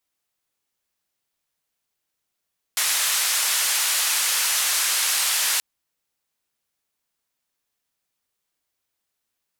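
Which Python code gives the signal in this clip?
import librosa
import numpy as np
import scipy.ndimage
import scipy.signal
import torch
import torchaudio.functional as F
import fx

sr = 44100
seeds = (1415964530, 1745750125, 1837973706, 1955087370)

y = fx.band_noise(sr, seeds[0], length_s=2.83, low_hz=1100.0, high_hz=12000.0, level_db=-22.0)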